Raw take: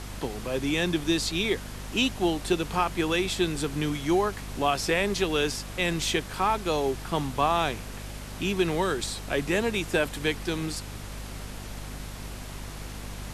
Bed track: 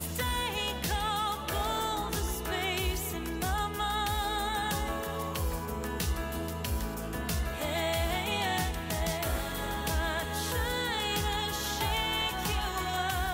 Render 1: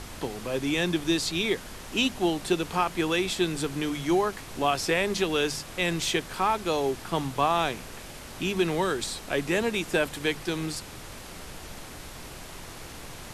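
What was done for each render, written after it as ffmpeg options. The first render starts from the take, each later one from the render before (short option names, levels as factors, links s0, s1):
-af "bandreject=f=50:t=h:w=4,bandreject=f=100:t=h:w=4,bandreject=f=150:t=h:w=4,bandreject=f=200:t=h:w=4,bandreject=f=250:t=h:w=4"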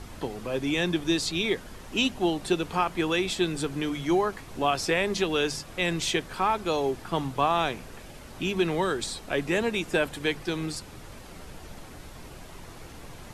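-af "afftdn=nr=7:nf=-43"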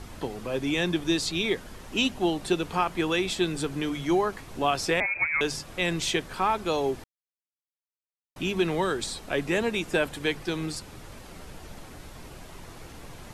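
-filter_complex "[0:a]asettb=1/sr,asplit=3[s0][s1][s2];[s0]atrim=end=5.004[s3];[s1]atrim=start=5:end=5.41,asetpts=PTS-STARTPTS,afade=t=in:d=0.004:c=qsin,afade=t=out:st=0.406:d=0.004:c=qsin,lowpass=f=2200:t=q:w=0.5098,lowpass=f=2200:t=q:w=0.6013,lowpass=f=2200:t=q:w=0.9,lowpass=f=2200:t=q:w=2.563,afreqshift=-2600[s4];[s2]atrim=start=5.406[s5];[s3][s4]acrossfade=d=0.004:c1=hsin:c2=qsin[s6];[s6][s5]acrossfade=d=0.004:c1=qsin:c2=hsin,asplit=3[s7][s8][s9];[s7]atrim=end=7.04,asetpts=PTS-STARTPTS,afade=t=out:st=7.036:d=0.004:c=hsin[s10];[s8]atrim=start=7.04:end=8.36,asetpts=PTS-STARTPTS,volume=0[s11];[s9]atrim=start=8.36,asetpts=PTS-STARTPTS,afade=t=in:d=0.004:c=hsin[s12];[s10][s11][s12]concat=n=3:v=0:a=1"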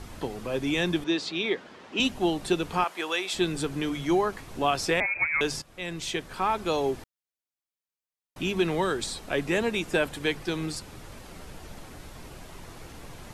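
-filter_complex "[0:a]asettb=1/sr,asplit=3[s0][s1][s2];[s0]atrim=end=1.044[s3];[s1]atrim=start=1.04:end=2,asetpts=PTS-STARTPTS,afade=t=in:d=0.004:c=qsin,afade=t=out:st=0.956:d=0.004:c=qsin,highpass=240,lowpass=4000[s4];[s2]atrim=start=1.996[s5];[s3][s4]acrossfade=d=0.004:c1=hsin:c2=qsin[s6];[s6][s5]acrossfade=d=0.004:c1=qsin:c2=hsin,asettb=1/sr,asplit=3[s7][s8][s9];[s7]atrim=end=2.844[s10];[s8]atrim=start=2.84:end=3.34,asetpts=PTS-STARTPTS,afade=t=in:d=0.004:c=qsin,afade=t=out:st=0.496:d=0.004:c=qsin,highpass=550[s11];[s9]atrim=start=3.336[s12];[s10][s11]acrossfade=d=0.004:c1=hsin:c2=qsin[s13];[s13][s12]acrossfade=d=0.004:c1=qsin:c2=hsin,asplit=2[s14][s15];[s14]atrim=end=5.62,asetpts=PTS-STARTPTS,afade=t=out:st=5.616:d=0.004:c=hsin:silence=0.223872[s16];[s15]atrim=start=5.62,asetpts=PTS-STARTPTS,afade=t=in:d=1.03:silence=0.223872[s17];[s16][s17]concat=n=2:v=0:a=1"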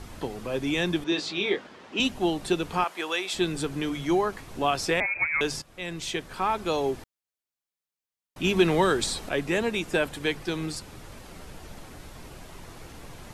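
-filter_complex "[0:a]asettb=1/sr,asplit=3[s0][s1][s2];[s0]atrim=end=1.104[s3];[s1]atrim=start=1.1:end=1.67,asetpts=PTS-STARTPTS,afade=t=in:d=0.004:c=qsin,afade=t=out:st=0.566:d=0.004:c=qsin,asplit=2[s4][s5];[s5]adelay=20,volume=0.631[s6];[s4][s6]amix=inputs=2:normalize=0,atrim=end_sample=25137[s7];[s2]atrim=start=1.666[s8];[s3][s7]acrossfade=d=0.004:c1=hsin:c2=qsin[s9];[s9][s8]acrossfade=d=0.004:c1=qsin:c2=hsin,asplit=3[s10][s11][s12];[s10]atrim=end=8.442[s13];[s11]atrim=start=8.438:end=9.292,asetpts=PTS-STARTPTS,volume=1.68[s14];[s12]atrim=start=9.288[s15];[s13][s14]acrossfade=d=0.004:c1=hsin:c2=hsin[s16];[s16][s15]acrossfade=d=0.004:c1=hsin:c2=hsin"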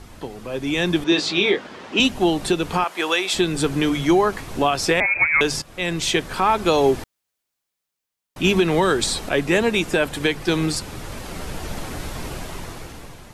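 -af "dynaudnorm=f=280:g=7:m=5.01,alimiter=limit=0.422:level=0:latency=1:release=242"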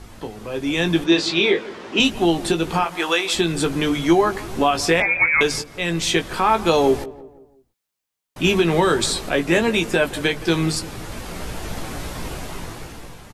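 -filter_complex "[0:a]asplit=2[s0][s1];[s1]adelay=18,volume=0.422[s2];[s0][s2]amix=inputs=2:normalize=0,asplit=2[s3][s4];[s4]adelay=170,lowpass=f=1300:p=1,volume=0.141,asplit=2[s5][s6];[s6]adelay=170,lowpass=f=1300:p=1,volume=0.46,asplit=2[s7][s8];[s8]adelay=170,lowpass=f=1300:p=1,volume=0.46,asplit=2[s9][s10];[s10]adelay=170,lowpass=f=1300:p=1,volume=0.46[s11];[s3][s5][s7][s9][s11]amix=inputs=5:normalize=0"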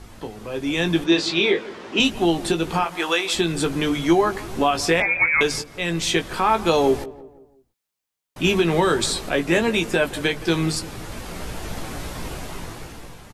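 -af "volume=0.841"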